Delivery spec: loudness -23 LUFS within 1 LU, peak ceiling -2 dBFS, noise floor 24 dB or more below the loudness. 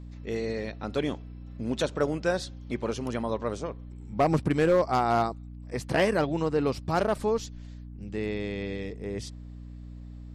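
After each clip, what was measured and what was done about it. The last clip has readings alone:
clipped 0.3%; flat tops at -16.0 dBFS; hum 60 Hz; harmonics up to 300 Hz; hum level -40 dBFS; loudness -29.0 LUFS; peak -16.0 dBFS; loudness target -23.0 LUFS
-> clip repair -16 dBFS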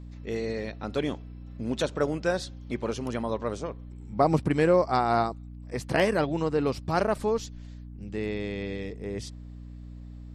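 clipped 0.0%; hum 60 Hz; harmonics up to 300 Hz; hum level -39 dBFS
-> notches 60/120/180/240/300 Hz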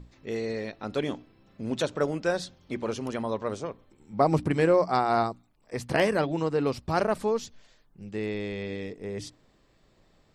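hum none; loudness -29.0 LUFS; peak -9.5 dBFS; loudness target -23.0 LUFS
-> gain +6 dB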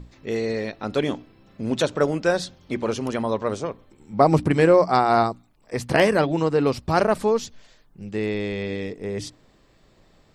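loudness -23.0 LUFS; peak -3.5 dBFS; noise floor -58 dBFS

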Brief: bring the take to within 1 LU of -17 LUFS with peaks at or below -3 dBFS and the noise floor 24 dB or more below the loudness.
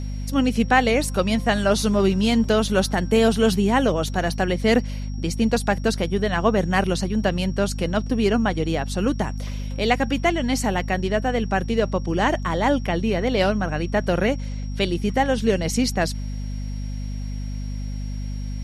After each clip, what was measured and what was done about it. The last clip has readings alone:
hum 50 Hz; harmonics up to 250 Hz; hum level -26 dBFS; steady tone 5600 Hz; tone level -48 dBFS; loudness -22.5 LUFS; peak -4.5 dBFS; loudness target -17.0 LUFS
-> notches 50/100/150/200/250 Hz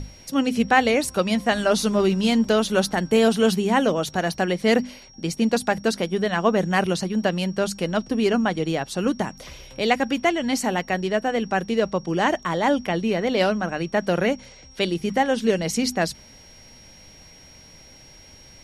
hum none; steady tone 5600 Hz; tone level -48 dBFS
-> notch 5600 Hz, Q 30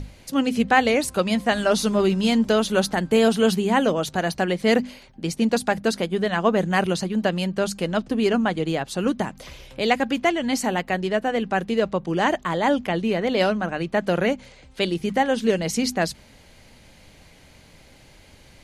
steady tone none; loudness -22.5 LUFS; peak -4.5 dBFS; loudness target -17.0 LUFS
-> gain +5.5 dB; limiter -3 dBFS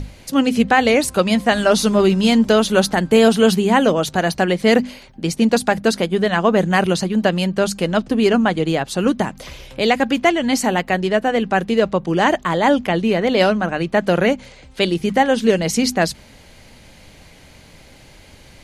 loudness -17.0 LUFS; peak -3.0 dBFS; noise floor -45 dBFS

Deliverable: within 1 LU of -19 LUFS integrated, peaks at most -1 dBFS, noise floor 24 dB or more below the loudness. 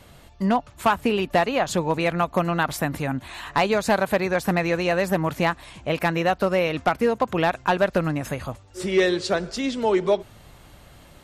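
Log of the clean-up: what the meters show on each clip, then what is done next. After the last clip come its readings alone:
clipped 0.3%; flat tops at -11.5 dBFS; loudness -23.5 LUFS; peak -11.5 dBFS; loudness target -19.0 LUFS
-> clip repair -11.5 dBFS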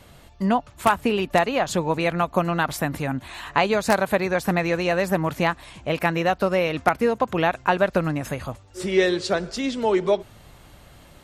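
clipped 0.0%; loudness -23.0 LUFS; peak -2.5 dBFS; loudness target -19.0 LUFS
-> gain +4 dB; limiter -1 dBFS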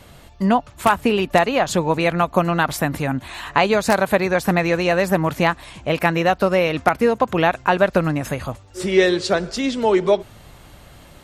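loudness -19.0 LUFS; peak -1.0 dBFS; noise floor -46 dBFS

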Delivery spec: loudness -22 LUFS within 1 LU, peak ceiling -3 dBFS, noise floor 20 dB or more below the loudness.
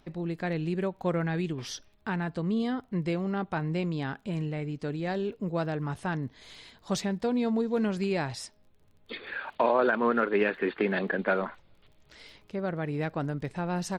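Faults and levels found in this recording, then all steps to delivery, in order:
ticks 27/s; loudness -30.5 LUFS; peak -13.0 dBFS; loudness target -22.0 LUFS
-> de-click; gain +8.5 dB

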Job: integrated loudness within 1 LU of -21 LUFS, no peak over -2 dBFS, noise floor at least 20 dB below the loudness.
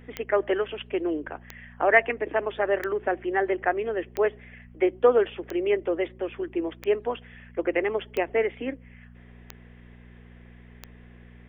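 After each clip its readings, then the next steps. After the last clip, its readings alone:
clicks 9; hum 60 Hz; harmonics up to 240 Hz; hum level -46 dBFS; loudness -26.5 LUFS; peak -4.0 dBFS; loudness target -21.0 LUFS
-> de-click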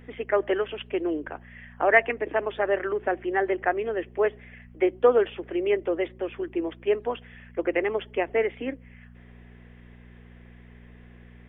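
clicks 0; hum 60 Hz; harmonics up to 240 Hz; hum level -46 dBFS
-> de-hum 60 Hz, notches 4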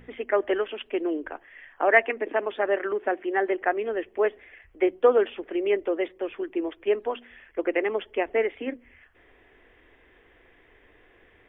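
hum none; loudness -26.5 LUFS; peak -4.0 dBFS; loudness target -21.0 LUFS
-> gain +5.5 dB; limiter -2 dBFS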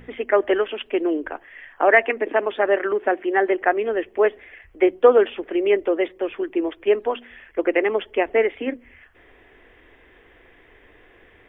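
loudness -21.0 LUFS; peak -2.0 dBFS; noise floor -53 dBFS

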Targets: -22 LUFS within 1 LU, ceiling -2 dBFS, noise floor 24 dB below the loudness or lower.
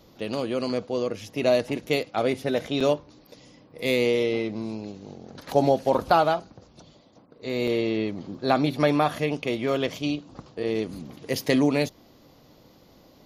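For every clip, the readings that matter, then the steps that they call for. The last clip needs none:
dropouts 2; longest dropout 5.3 ms; loudness -25.5 LUFS; peak -6.5 dBFS; loudness target -22.0 LUFS
-> interpolate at 2.8/7.67, 5.3 ms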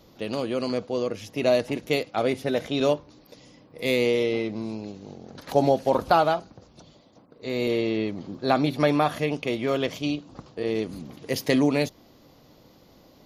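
dropouts 0; loudness -25.5 LUFS; peak -6.5 dBFS; loudness target -22.0 LUFS
-> gain +3.5 dB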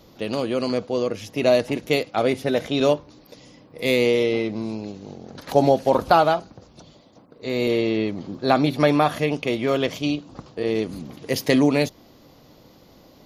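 loudness -22.0 LUFS; peak -3.0 dBFS; noise floor -52 dBFS

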